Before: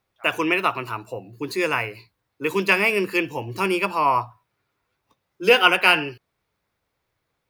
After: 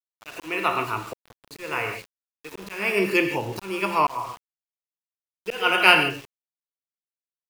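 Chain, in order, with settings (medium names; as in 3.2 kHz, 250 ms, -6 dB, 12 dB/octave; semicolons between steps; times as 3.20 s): gated-style reverb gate 180 ms flat, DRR 6 dB; slow attack 393 ms; small samples zeroed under -39.5 dBFS; trim +1 dB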